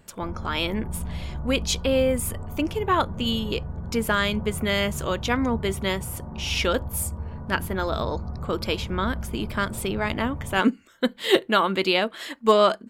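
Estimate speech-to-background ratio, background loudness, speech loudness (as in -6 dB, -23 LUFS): 9.5 dB, -35.0 LUFS, -25.5 LUFS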